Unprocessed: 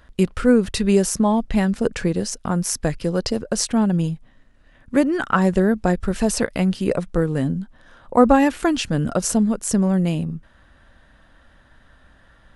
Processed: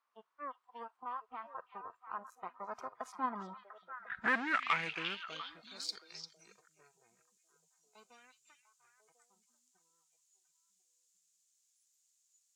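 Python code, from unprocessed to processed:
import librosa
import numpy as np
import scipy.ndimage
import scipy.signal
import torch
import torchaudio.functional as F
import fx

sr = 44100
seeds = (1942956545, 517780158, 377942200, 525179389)

p1 = fx.doppler_pass(x, sr, speed_mps=50, closest_m=3.2, pass_at_s=4.14)
p2 = fx.leveller(p1, sr, passes=5)
p3 = fx.level_steps(p2, sr, step_db=22)
p4 = p2 + (p3 * 10.0 ** (-2.5 / 20.0))
p5 = fx.quant_dither(p4, sr, seeds[0], bits=8, dither='triangular')
p6 = fx.noise_reduce_blind(p5, sr, reduce_db=21)
p7 = p6 + fx.echo_stepped(p6, sr, ms=348, hz=3500.0, octaves=-1.4, feedback_pct=70, wet_db=-4, dry=0)
p8 = fx.filter_sweep_bandpass(p7, sr, from_hz=1100.0, to_hz=7000.0, start_s=3.61, end_s=6.63, q=5.1)
y = p8 * 10.0 ** (3.5 / 20.0)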